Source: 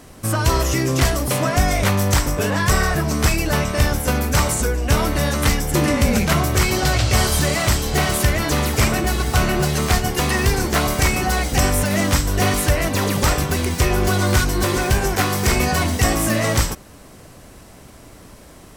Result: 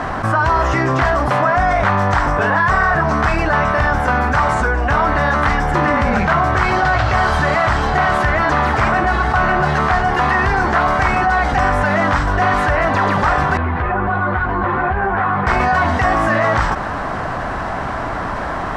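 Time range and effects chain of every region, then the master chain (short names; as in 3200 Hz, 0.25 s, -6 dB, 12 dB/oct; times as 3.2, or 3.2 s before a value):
13.57–15.47 air absorption 500 m + compressor, threshold -19 dBFS + ensemble effect
whole clip: LPF 3100 Hz 12 dB/oct; band shelf 1100 Hz +12 dB; fast leveller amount 70%; gain -5.5 dB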